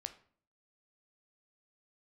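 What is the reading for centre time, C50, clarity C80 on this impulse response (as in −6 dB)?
6 ms, 13.5 dB, 18.0 dB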